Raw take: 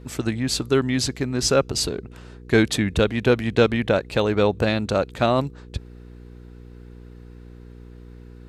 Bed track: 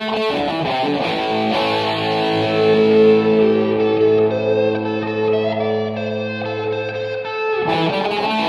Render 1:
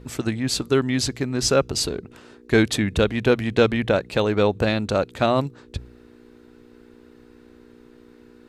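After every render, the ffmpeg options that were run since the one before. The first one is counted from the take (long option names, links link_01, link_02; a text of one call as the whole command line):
ffmpeg -i in.wav -af "bandreject=frequency=60:width_type=h:width=4,bandreject=frequency=120:width_type=h:width=4,bandreject=frequency=180:width_type=h:width=4" out.wav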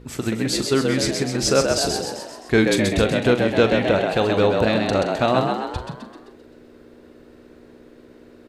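ffmpeg -i in.wav -filter_complex "[0:a]asplit=2[link_01][link_02];[link_02]adelay=41,volume=-11dB[link_03];[link_01][link_03]amix=inputs=2:normalize=0,asplit=2[link_04][link_05];[link_05]asplit=7[link_06][link_07][link_08][link_09][link_10][link_11][link_12];[link_06]adelay=130,afreqshift=77,volume=-4.5dB[link_13];[link_07]adelay=260,afreqshift=154,volume=-9.7dB[link_14];[link_08]adelay=390,afreqshift=231,volume=-14.9dB[link_15];[link_09]adelay=520,afreqshift=308,volume=-20.1dB[link_16];[link_10]adelay=650,afreqshift=385,volume=-25.3dB[link_17];[link_11]adelay=780,afreqshift=462,volume=-30.5dB[link_18];[link_12]adelay=910,afreqshift=539,volume=-35.7dB[link_19];[link_13][link_14][link_15][link_16][link_17][link_18][link_19]amix=inputs=7:normalize=0[link_20];[link_04][link_20]amix=inputs=2:normalize=0" out.wav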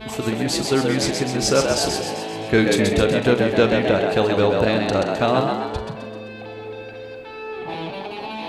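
ffmpeg -i in.wav -i bed.wav -filter_complex "[1:a]volume=-12dB[link_01];[0:a][link_01]amix=inputs=2:normalize=0" out.wav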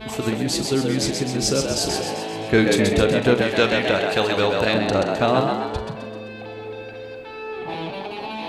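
ffmpeg -i in.wav -filter_complex "[0:a]asettb=1/sr,asplit=3[link_01][link_02][link_03];[link_01]atrim=end=0.364[link_04];[link_02]atrim=start=0.36:end=1.89,asetpts=PTS-STARTPTS,afade=type=in:duration=0.004:curve=qsin,afade=type=out:start_time=1.526:duration=0.004:curve=qsin,acrossover=split=440|3000[link_05][link_06][link_07];[link_06]acompressor=threshold=-36dB:ratio=2:attack=3.2:release=140:knee=2.83:detection=peak[link_08];[link_05][link_08][link_07]amix=inputs=3:normalize=0[link_09];[link_03]atrim=start=1.886[link_10];[link_04][link_09]acrossfade=duration=0.004:curve1=hsin:curve2=qsin[link_11];[link_11][link_10]acrossfade=duration=0.004:curve1=qsin:curve2=hsin,asettb=1/sr,asplit=3[link_12][link_13][link_14];[link_12]atrim=end=3.414[link_15];[link_13]atrim=start=3.41:end=4.74,asetpts=PTS-STARTPTS,afade=type=in:duration=0.004:curve=qsin,afade=type=out:start_time=1.326:duration=0.004:curve=qsin,tiltshelf=frequency=930:gain=-5[link_16];[link_14]atrim=start=4.736[link_17];[link_15][link_16]acrossfade=duration=0.004:curve1=hsin:curve2=qsin[link_18];[link_18][link_17]acrossfade=duration=0.004:curve1=qsin:curve2=hsin" out.wav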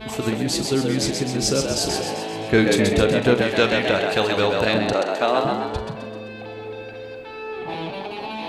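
ffmpeg -i in.wav -filter_complex "[0:a]asettb=1/sr,asplit=3[link_01][link_02][link_03];[link_01]atrim=end=4.934[link_04];[link_02]atrim=start=4.93:end=5.45,asetpts=PTS-STARTPTS,afade=type=in:duration=0.004:curve=qsin,afade=type=out:start_time=0.516:duration=0.004:curve=qsin,highpass=350[link_05];[link_03]atrim=start=5.446[link_06];[link_04][link_05]acrossfade=duration=0.004:curve1=hsin:curve2=qsin[link_07];[link_07][link_06]acrossfade=duration=0.004:curve1=qsin:curve2=hsin" out.wav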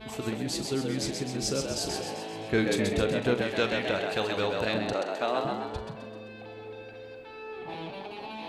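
ffmpeg -i in.wav -af "volume=-9dB" out.wav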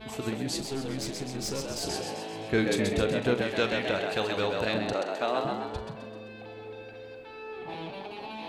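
ffmpeg -i in.wav -filter_complex "[0:a]asettb=1/sr,asplit=3[link_01][link_02][link_03];[link_01]atrim=end=0.604[link_04];[link_02]atrim=start=0.6:end=1.83,asetpts=PTS-STARTPTS,afade=type=in:duration=0.004:curve=qsin,afade=type=out:start_time=1.226:duration=0.004:curve=qsin,aeval=exprs='(tanh(22.4*val(0)+0.45)-tanh(0.45))/22.4':channel_layout=same[link_05];[link_03]atrim=start=1.826[link_06];[link_04][link_05]acrossfade=duration=0.004:curve1=hsin:curve2=qsin[link_07];[link_07][link_06]acrossfade=duration=0.004:curve1=qsin:curve2=hsin" out.wav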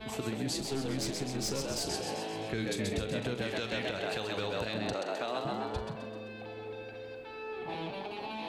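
ffmpeg -i in.wav -filter_complex "[0:a]acrossover=split=160|3000[link_01][link_02][link_03];[link_02]acompressor=threshold=-30dB:ratio=6[link_04];[link_01][link_04][link_03]amix=inputs=3:normalize=0,alimiter=limit=-23dB:level=0:latency=1:release=164" out.wav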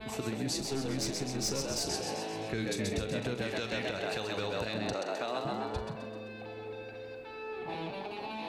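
ffmpeg -i in.wav -af "adynamicequalizer=threshold=0.00178:dfrequency=5800:dqfactor=4.8:tfrequency=5800:tqfactor=4.8:attack=5:release=100:ratio=0.375:range=2.5:mode=boostabove:tftype=bell,bandreject=frequency=3200:width=13" out.wav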